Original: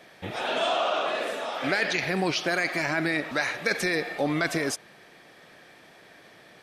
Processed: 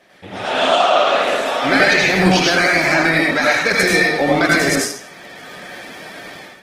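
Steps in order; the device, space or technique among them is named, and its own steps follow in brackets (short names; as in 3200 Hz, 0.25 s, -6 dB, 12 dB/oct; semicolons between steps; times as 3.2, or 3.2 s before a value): far-field microphone of a smart speaker (reverb RT60 0.50 s, pre-delay 78 ms, DRR -3 dB; HPF 100 Hz 6 dB/oct; AGC gain up to 14 dB; Opus 16 kbps 48000 Hz)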